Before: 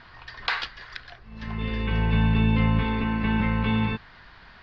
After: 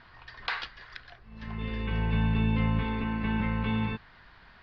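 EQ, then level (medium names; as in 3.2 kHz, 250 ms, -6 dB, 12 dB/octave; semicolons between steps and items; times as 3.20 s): distance through air 60 m; -5.0 dB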